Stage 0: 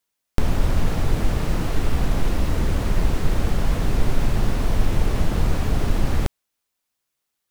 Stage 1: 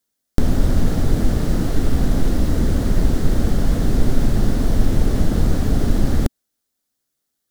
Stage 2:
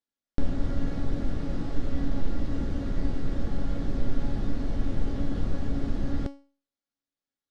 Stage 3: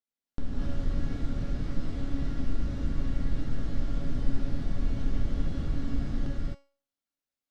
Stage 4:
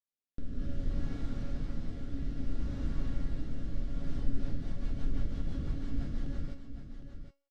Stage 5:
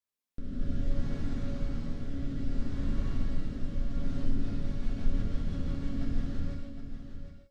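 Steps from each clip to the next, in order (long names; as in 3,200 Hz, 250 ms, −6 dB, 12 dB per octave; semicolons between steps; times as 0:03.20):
graphic EQ with 15 bands 250 Hz +6 dB, 1,000 Hz −7 dB, 2,500 Hz −9 dB; level +3 dB
low-pass filter 4,100 Hz 12 dB per octave; tuned comb filter 280 Hz, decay 0.38 s, harmonics all, mix 80%
dynamic equaliser 580 Hz, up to −5 dB, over −48 dBFS, Q 0.88; reverb whose tail is shaped and stops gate 290 ms rising, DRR −4.5 dB; level −7 dB
rotating-speaker cabinet horn 0.6 Hz, later 6 Hz, at 0:03.84; on a send: single-tap delay 761 ms −9.5 dB; on the sum: level −4 dB
reverb whose tail is shaped and stops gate 190 ms flat, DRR −1 dB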